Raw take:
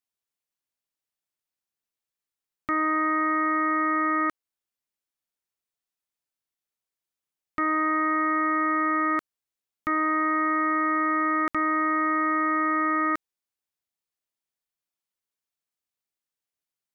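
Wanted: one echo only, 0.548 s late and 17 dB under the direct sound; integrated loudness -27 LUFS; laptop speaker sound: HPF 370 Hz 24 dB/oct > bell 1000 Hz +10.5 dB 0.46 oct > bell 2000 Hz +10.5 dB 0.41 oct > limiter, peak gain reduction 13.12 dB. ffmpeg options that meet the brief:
-af "highpass=f=370:w=0.5412,highpass=f=370:w=1.3066,equalizer=f=1k:t=o:w=0.46:g=10.5,equalizer=f=2k:t=o:w=0.41:g=10.5,aecho=1:1:548:0.141,volume=4.5dB,alimiter=limit=-20dB:level=0:latency=1"

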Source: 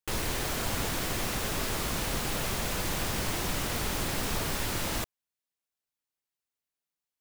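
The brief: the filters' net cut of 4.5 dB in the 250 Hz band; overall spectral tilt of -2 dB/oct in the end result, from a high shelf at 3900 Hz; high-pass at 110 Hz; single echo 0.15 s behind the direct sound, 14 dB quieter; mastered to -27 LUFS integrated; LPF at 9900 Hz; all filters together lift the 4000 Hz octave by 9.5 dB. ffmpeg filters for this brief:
-af "highpass=110,lowpass=9.9k,equalizer=f=250:t=o:g=-6,highshelf=f=3.9k:g=6.5,equalizer=f=4k:t=o:g=8,aecho=1:1:150:0.2,volume=-1dB"

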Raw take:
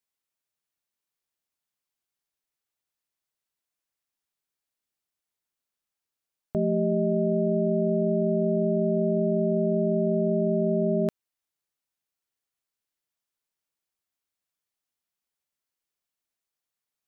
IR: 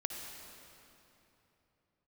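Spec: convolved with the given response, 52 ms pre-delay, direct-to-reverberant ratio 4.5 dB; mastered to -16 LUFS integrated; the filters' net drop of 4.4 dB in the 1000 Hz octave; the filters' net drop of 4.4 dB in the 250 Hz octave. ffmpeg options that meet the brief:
-filter_complex "[0:a]equalizer=f=250:t=o:g=-6,equalizer=f=1k:t=o:g=-9,asplit=2[a][b];[1:a]atrim=start_sample=2205,adelay=52[c];[b][c]afir=irnorm=-1:irlink=0,volume=-5.5dB[d];[a][d]amix=inputs=2:normalize=0,volume=13.5dB"

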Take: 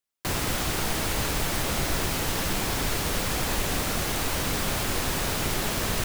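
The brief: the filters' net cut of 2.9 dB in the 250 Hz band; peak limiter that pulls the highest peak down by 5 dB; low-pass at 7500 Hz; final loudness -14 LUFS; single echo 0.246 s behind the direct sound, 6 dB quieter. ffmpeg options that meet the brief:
-af "lowpass=7.5k,equalizer=f=250:t=o:g=-4,alimiter=limit=-20dB:level=0:latency=1,aecho=1:1:246:0.501,volume=15dB"

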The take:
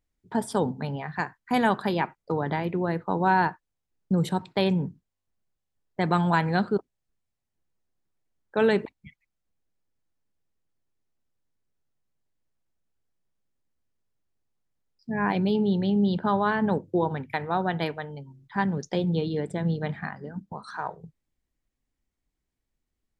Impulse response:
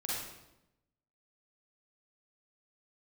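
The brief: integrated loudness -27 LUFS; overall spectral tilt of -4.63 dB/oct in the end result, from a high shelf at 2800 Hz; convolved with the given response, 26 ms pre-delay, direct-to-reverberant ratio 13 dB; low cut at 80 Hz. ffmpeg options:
-filter_complex "[0:a]highpass=80,highshelf=f=2.8k:g=8,asplit=2[a][b];[1:a]atrim=start_sample=2205,adelay=26[c];[b][c]afir=irnorm=-1:irlink=0,volume=-16dB[d];[a][d]amix=inputs=2:normalize=0,volume=-1dB"

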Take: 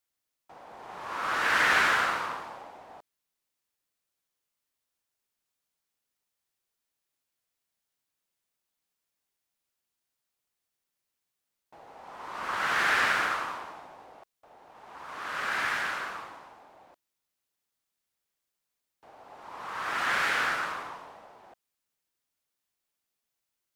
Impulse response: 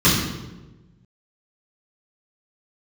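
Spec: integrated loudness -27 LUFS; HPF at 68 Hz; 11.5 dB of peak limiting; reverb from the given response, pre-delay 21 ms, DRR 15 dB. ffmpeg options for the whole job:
-filter_complex "[0:a]highpass=68,alimiter=limit=-22.5dB:level=0:latency=1,asplit=2[a][b];[1:a]atrim=start_sample=2205,adelay=21[c];[b][c]afir=irnorm=-1:irlink=0,volume=-36dB[d];[a][d]amix=inputs=2:normalize=0,volume=5.5dB"

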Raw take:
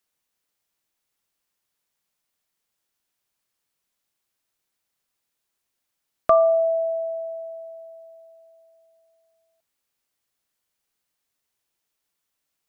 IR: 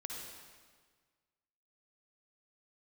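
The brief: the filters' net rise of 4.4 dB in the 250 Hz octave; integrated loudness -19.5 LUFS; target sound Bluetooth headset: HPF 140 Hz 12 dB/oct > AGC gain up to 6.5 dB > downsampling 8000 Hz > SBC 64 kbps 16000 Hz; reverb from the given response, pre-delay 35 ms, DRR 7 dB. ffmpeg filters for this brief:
-filter_complex "[0:a]equalizer=f=250:t=o:g=6,asplit=2[a][b];[1:a]atrim=start_sample=2205,adelay=35[c];[b][c]afir=irnorm=-1:irlink=0,volume=-6dB[d];[a][d]amix=inputs=2:normalize=0,highpass=140,dynaudnorm=m=6.5dB,aresample=8000,aresample=44100,volume=-0.5dB" -ar 16000 -c:a sbc -b:a 64k

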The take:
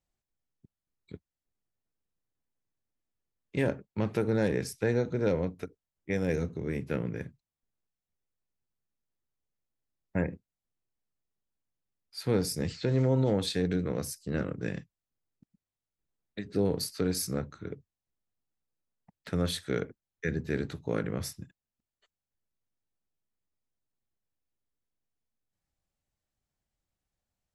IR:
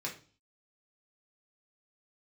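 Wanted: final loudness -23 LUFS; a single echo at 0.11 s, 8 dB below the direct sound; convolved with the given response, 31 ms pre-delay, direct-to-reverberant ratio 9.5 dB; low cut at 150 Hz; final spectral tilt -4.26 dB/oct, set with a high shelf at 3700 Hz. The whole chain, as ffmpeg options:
-filter_complex "[0:a]highpass=150,highshelf=f=3.7k:g=7.5,aecho=1:1:110:0.398,asplit=2[a][b];[1:a]atrim=start_sample=2205,adelay=31[c];[b][c]afir=irnorm=-1:irlink=0,volume=-11.5dB[d];[a][d]amix=inputs=2:normalize=0,volume=7.5dB"

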